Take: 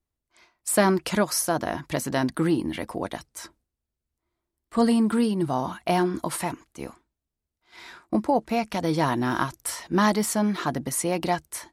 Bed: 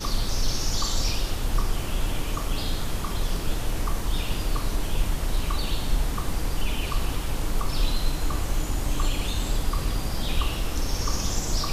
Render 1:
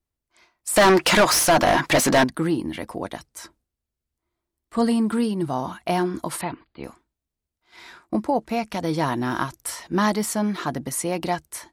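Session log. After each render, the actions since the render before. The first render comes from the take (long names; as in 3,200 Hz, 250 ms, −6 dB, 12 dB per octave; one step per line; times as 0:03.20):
0:00.76–0:02.24: mid-hump overdrive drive 28 dB, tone 4,500 Hz, clips at −7.5 dBFS
0:06.41–0:06.84: linear-phase brick-wall low-pass 4,900 Hz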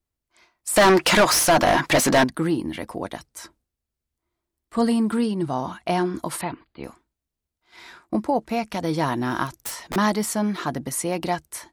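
0:05.17–0:06.16: low-pass filter 9,500 Hz
0:09.46–0:09.96: wrap-around overflow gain 23 dB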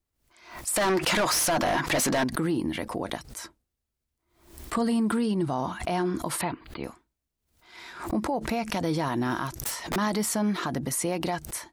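brickwall limiter −19 dBFS, peak gain reduction 11 dB
background raised ahead of every attack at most 100 dB per second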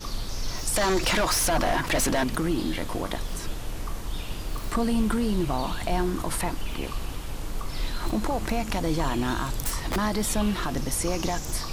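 mix in bed −6 dB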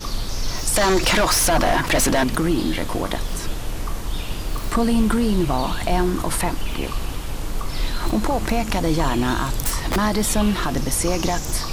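level +6 dB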